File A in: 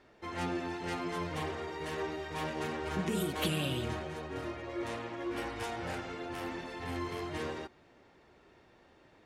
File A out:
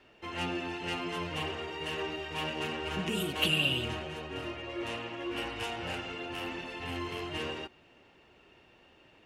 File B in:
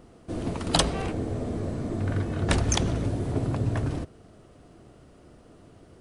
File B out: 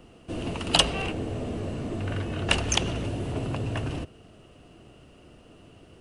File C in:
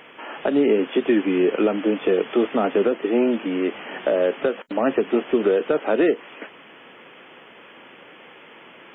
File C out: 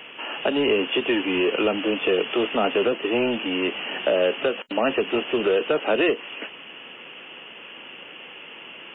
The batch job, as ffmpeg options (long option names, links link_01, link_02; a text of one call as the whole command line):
ffmpeg -i in.wav -filter_complex "[0:a]equalizer=frequency=2800:width=5.2:gain=14.5,acrossover=split=410|840[link_01][link_02][link_03];[link_01]asoftclip=type=tanh:threshold=-26.5dB[link_04];[link_04][link_02][link_03]amix=inputs=3:normalize=0" out.wav